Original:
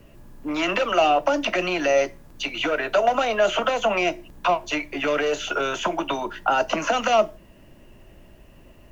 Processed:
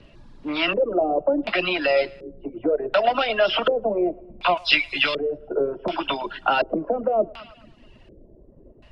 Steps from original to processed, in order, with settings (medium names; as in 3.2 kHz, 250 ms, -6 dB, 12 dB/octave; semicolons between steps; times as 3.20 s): knee-point frequency compression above 3.4 kHz 1.5:1; 4.57–5.38 s: FFT filter 140 Hz 0 dB, 430 Hz -8 dB, 7.6 kHz +15 dB; two-band feedback delay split 340 Hz, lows 223 ms, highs 109 ms, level -12.5 dB; LFO low-pass square 0.68 Hz 450–4000 Hz; reverb removal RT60 0.8 s